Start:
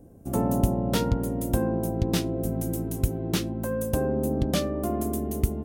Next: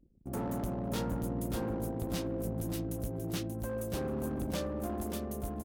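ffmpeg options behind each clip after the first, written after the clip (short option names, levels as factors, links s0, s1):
-af "asoftclip=type=hard:threshold=0.0668,anlmdn=0.251,aecho=1:1:583|1166|1749:0.501|0.12|0.0289,volume=0.398"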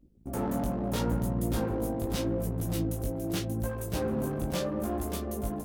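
-af "flanger=delay=16:depth=5.5:speed=0.78,volume=2.37"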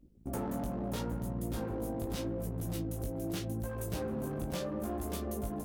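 -af "acompressor=threshold=0.0224:ratio=6"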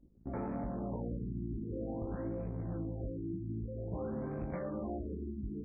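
-af "afftfilt=real='re*lt(b*sr/1024,380*pow(2600/380,0.5+0.5*sin(2*PI*0.51*pts/sr)))':imag='im*lt(b*sr/1024,380*pow(2600/380,0.5+0.5*sin(2*PI*0.51*pts/sr)))':win_size=1024:overlap=0.75,volume=0.794"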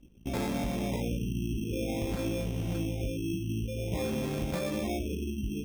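-af "acrusher=samples=15:mix=1:aa=0.000001,volume=2.11"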